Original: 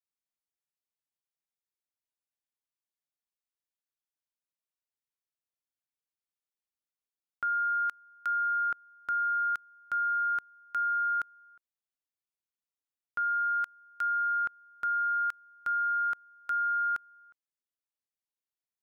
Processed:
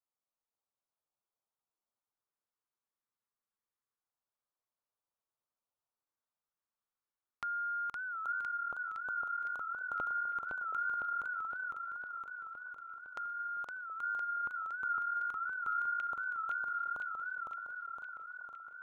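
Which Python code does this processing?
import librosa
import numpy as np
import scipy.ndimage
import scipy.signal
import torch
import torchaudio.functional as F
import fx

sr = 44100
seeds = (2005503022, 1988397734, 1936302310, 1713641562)

y = fx.curve_eq(x, sr, hz=(310.0, 580.0, 1200.0, 2800.0), db=(0, 6, 8, -10))
y = fx.filter_lfo_notch(y, sr, shape='square', hz=0.25, low_hz=660.0, high_hz=2000.0, q=1.2)
y = fx.env_flanger(y, sr, rest_ms=9.1, full_db=-50.0)
y = fx.echo_stepped(y, sr, ms=724, hz=510.0, octaves=0.7, feedback_pct=70, wet_db=-10.0)
y = fx.echo_warbled(y, sr, ms=510, feedback_pct=67, rate_hz=2.8, cents=129, wet_db=-3.5)
y = y * librosa.db_to_amplitude(1.0)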